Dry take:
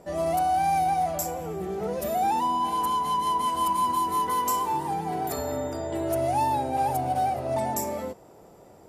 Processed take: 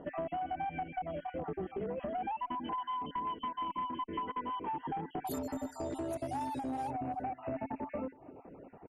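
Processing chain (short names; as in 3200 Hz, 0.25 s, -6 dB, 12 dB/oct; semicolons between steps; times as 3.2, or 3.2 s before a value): random spectral dropouts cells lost 36%; reverb removal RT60 0.53 s; bell 270 Hz +13 dB 0.27 oct; compressor 8:1, threshold -34 dBFS, peak gain reduction 13.5 dB; one-sided clip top -33 dBFS; brick-wall FIR low-pass 3300 Hz, from 5.25 s 12000 Hz, from 6.89 s 2900 Hz; echo 0.326 s -22.5 dB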